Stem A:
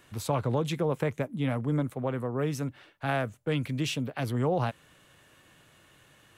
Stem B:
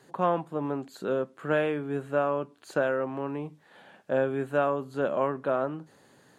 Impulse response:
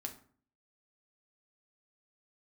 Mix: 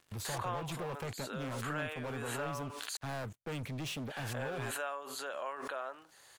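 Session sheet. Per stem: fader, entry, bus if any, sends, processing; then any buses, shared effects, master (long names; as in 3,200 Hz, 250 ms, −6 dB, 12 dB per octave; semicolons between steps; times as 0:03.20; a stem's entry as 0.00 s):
−14.0 dB, 0.00 s, no send, leveller curve on the samples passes 5
−3.0 dB, 0.25 s, muted 0:02.97–0:04.10, no send, high-pass filter 730 Hz 12 dB per octave; high-shelf EQ 2,000 Hz +11 dB; background raised ahead of every attack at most 36 dB per second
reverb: not used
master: downward compressor 1.5 to 1, threshold −51 dBFS, peak gain reduction 10 dB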